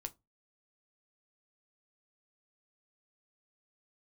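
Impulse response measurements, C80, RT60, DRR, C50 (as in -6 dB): 32.5 dB, 0.20 s, 7.5 dB, 24.0 dB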